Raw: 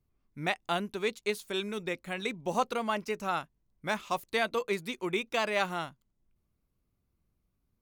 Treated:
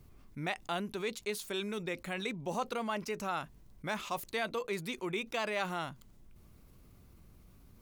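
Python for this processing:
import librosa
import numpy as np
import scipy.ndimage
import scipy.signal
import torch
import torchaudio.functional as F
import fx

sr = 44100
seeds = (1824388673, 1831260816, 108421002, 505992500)

y = fx.env_flatten(x, sr, amount_pct=50)
y = y * librosa.db_to_amplitude(-7.5)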